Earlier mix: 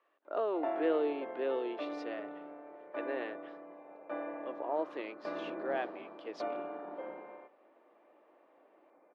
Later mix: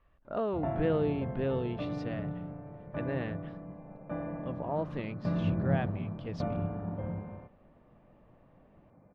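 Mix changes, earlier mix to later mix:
background: add treble shelf 2.6 kHz -10 dB; master: remove Chebyshev high-pass 320 Hz, order 4

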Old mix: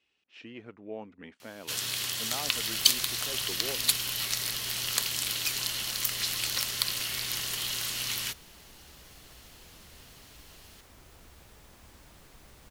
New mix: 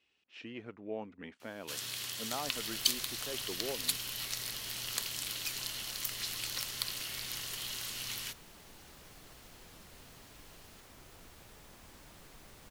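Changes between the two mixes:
first sound -7.5 dB; second sound: add peaking EQ 62 Hz -7.5 dB 0.81 oct

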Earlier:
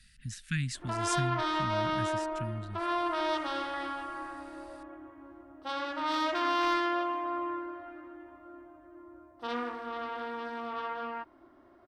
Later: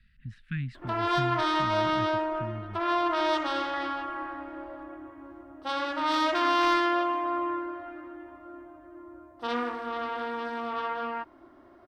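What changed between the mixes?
speech: add distance through air 450 m; background +4.5 dB

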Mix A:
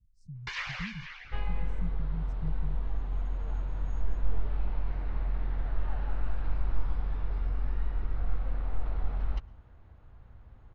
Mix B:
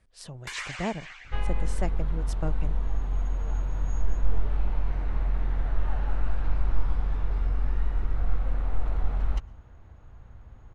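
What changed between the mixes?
speech: remove inverse Chebyshev band-stop 610–2900 Hz, stop band 70 dB; second sound +4.5 dB; master: remove steep low-pass 5.5 kHz 36 dB/octave

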